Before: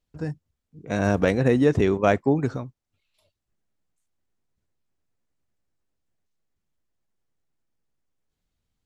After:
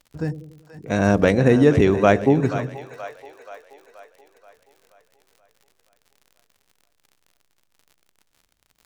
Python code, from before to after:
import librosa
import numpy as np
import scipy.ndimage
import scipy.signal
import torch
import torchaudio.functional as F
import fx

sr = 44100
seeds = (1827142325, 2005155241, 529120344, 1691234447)

y = fx.dmg_crackle(x, sr, seeds[0], per_s=53.0, level_db=-44.0)
y = fx.echo_split(y, sr, split_hz=530.0, low_ms=94, high_ms=479, feedback_pct=52, wet_db=-11.5)
y = y * librosa.db_to_amplitude(4.0)